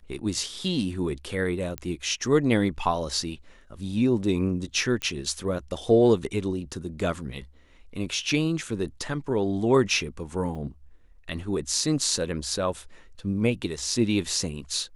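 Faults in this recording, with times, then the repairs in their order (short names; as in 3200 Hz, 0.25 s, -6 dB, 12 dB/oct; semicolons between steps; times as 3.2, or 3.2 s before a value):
1.78 pop -16 dBFS
5.02 pop -15 dBFS
10.55 gap 4.6 ms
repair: de-click; interpolate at 10.55, 4.6 ms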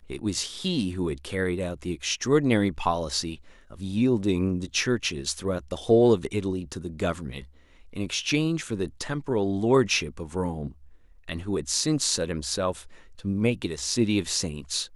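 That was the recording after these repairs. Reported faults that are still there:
none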